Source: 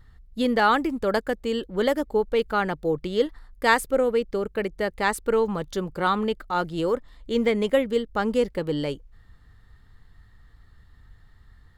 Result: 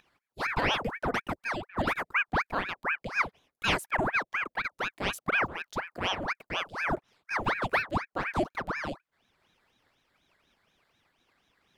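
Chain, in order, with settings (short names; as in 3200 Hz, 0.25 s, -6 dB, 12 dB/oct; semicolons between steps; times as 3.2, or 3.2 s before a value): upward compressor, threshold -41 dBFS; HPF 260 Hz 24 dB/oct; bell 390 Hz +4 dB 0.77 oct; ring modulator with a swept carrier 1100 Hz, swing 90%, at 4.1 Hz; gain -5.5 dB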